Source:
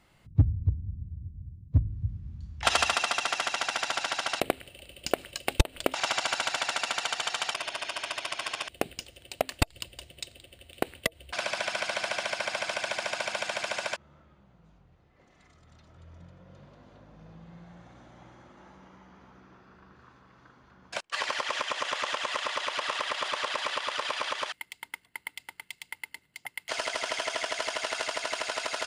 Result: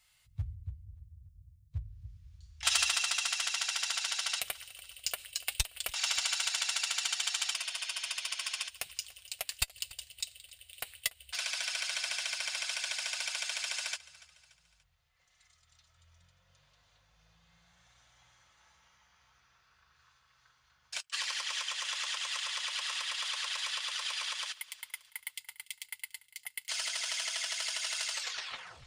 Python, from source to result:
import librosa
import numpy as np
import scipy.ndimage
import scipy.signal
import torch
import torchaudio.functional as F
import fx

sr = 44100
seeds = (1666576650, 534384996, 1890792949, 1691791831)

p1 = fx.tape_stop_end(x, sr, length_s=0.76)
p2 = fx.tone_stack(p1, sr, knobs='10-0-10')
p3 = np.clip(p2, -10.0 ** (-24.5 / 20.0), 10.0 ** (-24.5 / 20.0))
p4 = p2 + (p3 * librosa.db_to_amplitude(-10.0))
p5 = fx.high_shelf(p4, sr, hz=2600.0, db=11.0)
p6 = fx.notch_comb(p5, sr, f0_hz=200.0)
p7 = p6 + fx.echo_feedback(p6, sr, ms=289, feedback_pct=46, wet_db=-20.0, dry=0)
y = p7 * librosa.db_to_amplitude(-6.5)